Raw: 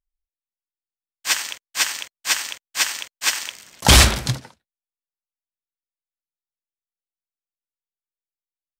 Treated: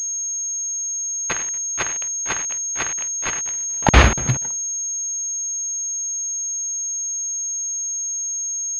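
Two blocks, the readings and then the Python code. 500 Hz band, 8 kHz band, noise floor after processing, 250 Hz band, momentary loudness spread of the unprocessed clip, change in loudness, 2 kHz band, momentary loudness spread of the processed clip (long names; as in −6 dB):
+2.5 dB, +8.0 dB, −26 dBFS, +2.0 dB, 16 LU, −1.5 dB, −1.0 dB, 5 LU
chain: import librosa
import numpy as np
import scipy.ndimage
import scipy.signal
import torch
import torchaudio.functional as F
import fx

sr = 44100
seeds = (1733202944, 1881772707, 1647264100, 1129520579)

y = fx.dead_time(x, sr, dead_ms=0.12)
y = fx.buffer_crackle(y, sr, first_s=0.77, period_s=0.24, block=2048, kind='zero')
y = fx.pwm(y, sr, carrier_hz=6500.0)
y = F.gain(torch.from_numpy(y), 3.5).numpy()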